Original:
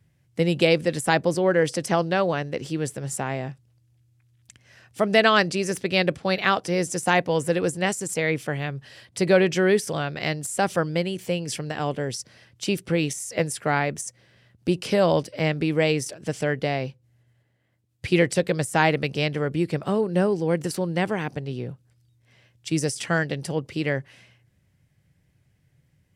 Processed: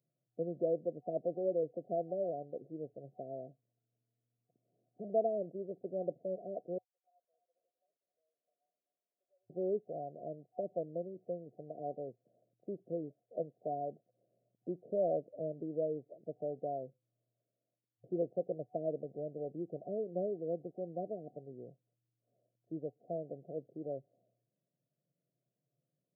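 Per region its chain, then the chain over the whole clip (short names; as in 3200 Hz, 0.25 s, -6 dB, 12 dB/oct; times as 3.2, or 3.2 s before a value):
3.47–5.1 minimum comb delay 0.81 ms + HPF 58 Hz + mismatched tape noise reduction encoder only
6.78–9.5 ladder high-pass 2000 Hz, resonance 85% + air absorption 100 m + lo-fi delay 0.259 s, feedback 35%, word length 9-bit, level -11.5 dB
whole clip: FFT band-pass 110–740 Hz; differentiator; gain +10.5 dB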